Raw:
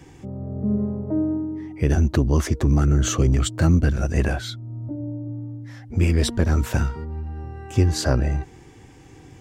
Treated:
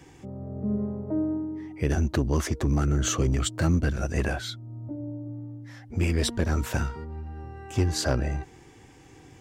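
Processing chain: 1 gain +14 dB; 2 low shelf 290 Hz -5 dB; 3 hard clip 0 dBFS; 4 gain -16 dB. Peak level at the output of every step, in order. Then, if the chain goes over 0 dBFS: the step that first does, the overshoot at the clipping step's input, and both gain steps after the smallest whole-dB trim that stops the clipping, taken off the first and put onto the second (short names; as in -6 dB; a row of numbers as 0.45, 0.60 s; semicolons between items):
+7.5, +5.0, 0.0, -16.0 dBFS; step 1, 5.0 dB; step 1 +9 dB, step 4 -11 dB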